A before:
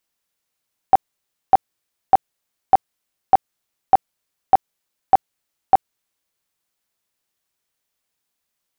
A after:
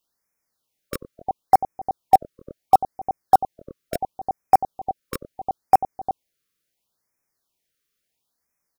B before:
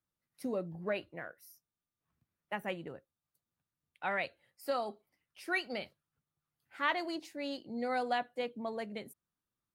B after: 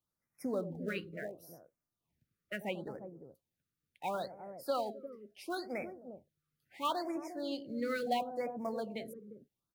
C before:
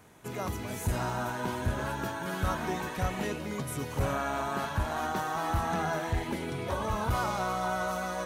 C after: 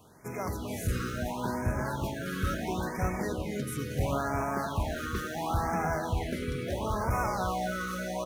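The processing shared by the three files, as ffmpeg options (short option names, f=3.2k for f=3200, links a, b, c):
-filter_complex "[0:a]acrossover=split=790|1500[a][b][c];[a]aecho=1:1:93|259|353:0.355|0.158|0.422[d];[b]acrusher=bits=3:mode=log:mix=0:aa=0.000001[e];[c]equalizer=f=7.9k:t=o:w=0.28:g=-3[f];[d][e][f]amix=inputs=3:normalize=0,afftfilt=real='re*(1-between(b*sr/1024,760*pow(3700/760,0.5+0.5*sin(2*PI*0.73*pts/sr))/1.41,760*pow(3700/760,0.5+0.5*sin(2*PI*0.73*pts/sr))*1.41))':imag='im*(1-between(b*sr/1024,760*pow(3700/760,0.5+0.5*sin(2*PI*0.73*pts/sr))/1.41,760*pow(3700/760,0.5+0.5*sin(2*PI*0.73*pts/sr))*1.41))':win_size=1024:overlap=0.75"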